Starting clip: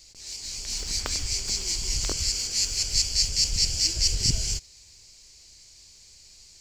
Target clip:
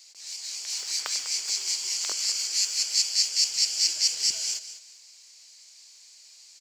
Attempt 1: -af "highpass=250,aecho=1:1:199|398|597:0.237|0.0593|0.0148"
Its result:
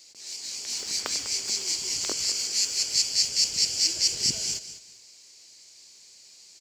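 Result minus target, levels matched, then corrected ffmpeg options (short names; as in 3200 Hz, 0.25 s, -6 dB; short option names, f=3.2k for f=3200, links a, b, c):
250 Hz band +16.0 dB
-af "highpass=820,aecho=1:1:199|398|597:0.237|0.0593|0.0148"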